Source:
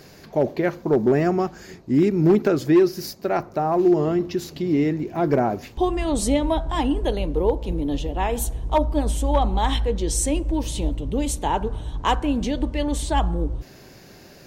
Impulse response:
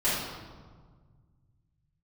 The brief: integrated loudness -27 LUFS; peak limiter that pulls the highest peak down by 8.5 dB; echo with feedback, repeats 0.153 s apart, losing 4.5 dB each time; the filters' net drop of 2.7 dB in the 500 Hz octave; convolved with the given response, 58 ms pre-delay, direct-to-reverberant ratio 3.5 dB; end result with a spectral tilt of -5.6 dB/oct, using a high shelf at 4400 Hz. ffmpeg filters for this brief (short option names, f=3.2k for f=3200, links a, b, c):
-filter_complex "[0:a]equalizer=f=500:t=o:g=-4,highshelf=f=4.4k:g=4,alimiter=limit=-17.5dB:level=0:latency=1,aecho=1:1:153|306|459|612|765|918|1071|1224|1377:0.596|0.357|0.214|0.129|0.0772|0.0463|0.0278|0.0167|0.01,asplit=2[a][b];[1:a]atrim=start_sample=2205,adelay=58[c];[b][c]afir=irnorm=-1:irlink=0,volume=-15.5dB[d];[a][d]amix=inputs=2:normalize=0,volume=-4dB"